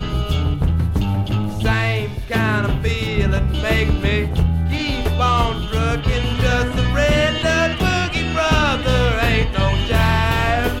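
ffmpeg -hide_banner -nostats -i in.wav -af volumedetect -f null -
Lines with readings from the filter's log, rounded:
mean_volume: -17.4 dB
max_volume: -3.7 dB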